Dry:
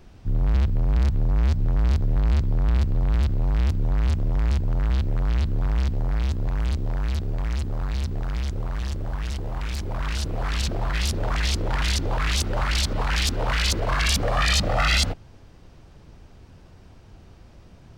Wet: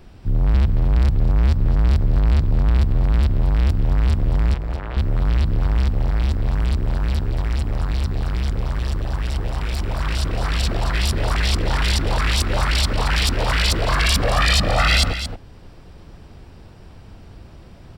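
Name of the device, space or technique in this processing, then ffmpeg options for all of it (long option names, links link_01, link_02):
ducked delay: -filter_complex "[0:a]bandreject=frequency=6400:width=6,asettb=1/sr,asplit=3[link_01][link_02][link_03];[link_01]atrim=end=4.544[link_04];[link_02]atrim=start=4.54:end=4.97,asetpts=PTS-STARTPTS,afade=type=in:duration=0.004:curve=qsin,afade=type=out:start_time=0.426:duration=0.004:curve=qsin,acrossover=split=360 3100:gain=0.224 1 0.224[link_05][link_06][link_07];[link_05][link_06][link_07]amix=inputs=3:normalize=0[link_08];[link_03]atrim=start=4.966[link_09];[link_04][link_08]acrossfade=duration=0.004:curve1=hsin:curve2=qsin[link_10];[link_10][link_09]acrossfade=duration=0.004:curve1=qsin:curve2=hsin,asplit=3[link_11][link_12][link_13];[link_12]adelay=225,volume=-2dB[link_14];[link_13]apad=whole_len=802818[link_15];[link_14][link_15]sidechaincompress=threshold=-28dB:ratio=6:attack=24:release=677[link_16];[link_11][link_16]amix=inputs=2:normalize=0,volume=4dB"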